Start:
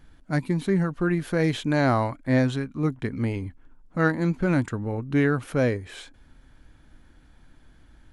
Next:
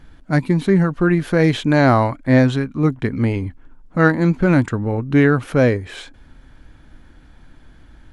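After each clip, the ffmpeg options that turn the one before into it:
-af "highshelf=f=7.3k:g=-8,volume=8dB"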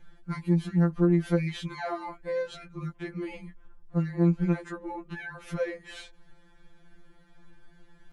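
-af "acompressor=threshold=-17dB:ratio=10,afftfilt=real='re*2.83*eq(mod(b,8),0)':imag='im*2.83*eq(mod(b,8),0)':win_size=2048:overlap=0.75,volume=-6.5dB"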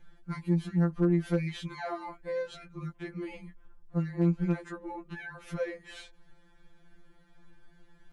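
-af "asoftclip=type=hard:threshold=-13.5dB,volume=-3dB"

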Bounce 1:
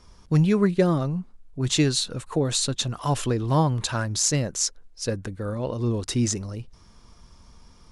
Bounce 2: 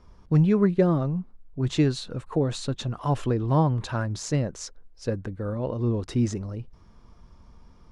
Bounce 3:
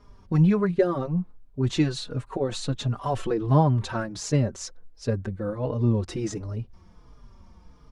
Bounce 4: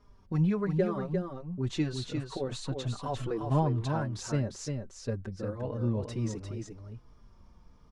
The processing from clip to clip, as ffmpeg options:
-af "lowpass=f=1.3k:p=1"
-filter_complex "[0:a]asplit=2[a][b];[b]adelay=4.4,afreqshift=-1.4[c];[a][c]amix=inputs=2:normalize=1,volume=4dB"
-af "aecho=1:1:350:0.531,volume=-7.5dB"

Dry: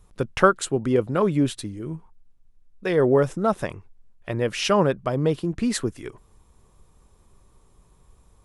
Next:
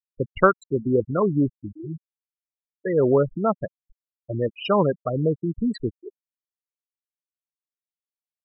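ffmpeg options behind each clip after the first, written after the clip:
-af "afftfilt=real='re*gte(hypot(re,im),0.158)':imag='im*gte(hypot(re,im),0.158)':win_size=1024:overlap=0.75"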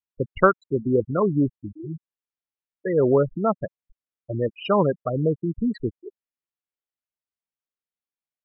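-af "lowpass=3k"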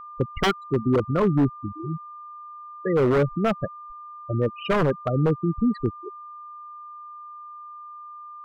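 -af "aeval=exprs='val(0)+0.0126*sin(2*PI*1200*n/s)':c=same,aeval=exprs='0.178*(abs(mod(val(0)/0.178+3,4)-2)-1)':c=same,bass=f=250:g=4,treble=f=4k:g=-4"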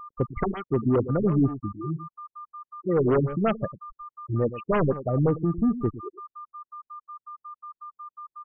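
-filter_complex "[0:a]asoftclip=type=tanh:threshold=-13dB,asplit=2[a][b];[b]adelay=105,volume=-13dB,highshelf=f=4k:g=-2.36[c];[a][c]amix=inputs=2:normalize=0,afftfilt=real='re*lt(b*sr/1024,340*pow(3400/340,0.5+0.5*sin(2*PI*5.5*pts/sr)))':imag='im*lt(b*sr/1024,340*pow(3400/340,0.5+0.5*sin(2*PI*5.5*pts/sr)))':win_size=1024:overlap=0.75"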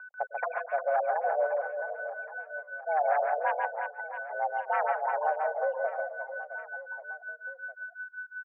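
-filter_complex "[0:a]asplit=2[a][b];[b]aecho=0:1:140|350|665|1138|1846:0.631|0.398|0.251|0.158|0.1[c];[a][c]amix=inputs=2:normalize=0,highpass=f=250:t=q:w=0.5412,highpass=f=250:t=q:w=1.307,lowpass=f=2k:t=q:w=0.5176,lowpass=f=2k:t=q:w=0.7071,lowpass=f=2k:t=q:w=1.932,afreqshift=300,volume=-4.5dB"

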